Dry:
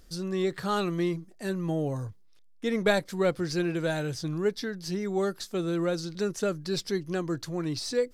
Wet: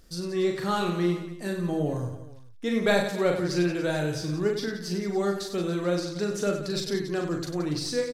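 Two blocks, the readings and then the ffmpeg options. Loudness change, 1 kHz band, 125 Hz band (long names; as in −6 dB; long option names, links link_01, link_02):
+2.0 dB, +2.0 dB, +2.0 dB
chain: -af "aecho=1:1:40|96|174.4|284.2|437.8:0.631|0.398|0.251|0.158|0.1"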